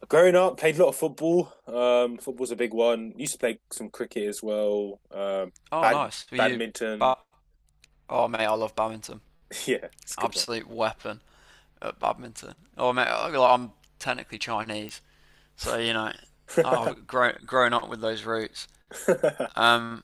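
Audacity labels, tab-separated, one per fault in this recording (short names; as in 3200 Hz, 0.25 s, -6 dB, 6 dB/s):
3.270000	3.270000	pop -20 dBFS
14.890000	14.890000	pop -22 dBFS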